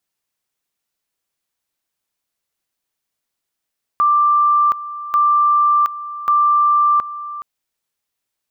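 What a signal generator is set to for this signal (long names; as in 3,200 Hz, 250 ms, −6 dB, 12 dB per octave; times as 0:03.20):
tone at two levels in turn 1,180 Hz −10.5 dBFS, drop 15 dB, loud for 0.72 s, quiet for 0.42 s, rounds 3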